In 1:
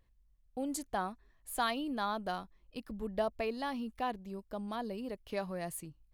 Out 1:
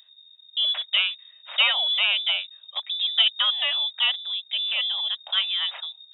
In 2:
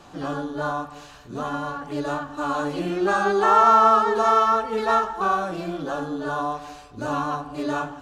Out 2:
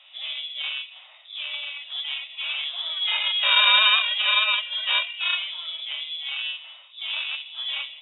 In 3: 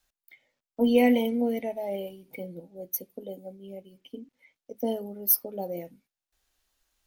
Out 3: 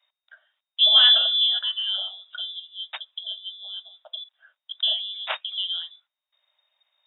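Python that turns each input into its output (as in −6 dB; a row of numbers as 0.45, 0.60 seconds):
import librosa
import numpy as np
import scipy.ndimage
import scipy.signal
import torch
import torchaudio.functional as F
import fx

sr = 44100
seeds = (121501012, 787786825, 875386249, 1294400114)

y = fx.tracing_dist(x, sr, depth_ms=0.34)
y = fx.freq_invert(y, sr, carrier_hz=3700)
y = scipy.signal.sosfilt(scipy.signal.cheby1(5, 1.0, 580.0, 'highpass', fs=sr, output='sos'), y)
y = y * 10.0 ** (-26 / 20.0) / np.sqrt(np.mean(np.square(y)))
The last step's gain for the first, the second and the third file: +13.5, −3.5, +5.5 decibels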